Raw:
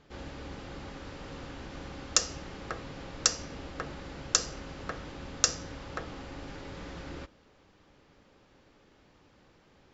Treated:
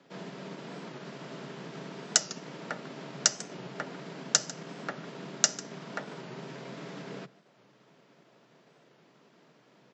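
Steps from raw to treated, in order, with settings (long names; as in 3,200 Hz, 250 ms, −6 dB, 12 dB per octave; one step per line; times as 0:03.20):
single-tap delay 147 ms −17 dB
transient designer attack +1 dB, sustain −4 dB
frequency shifter +120 Hz
wow of a warped record 45 rpm, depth 100 cents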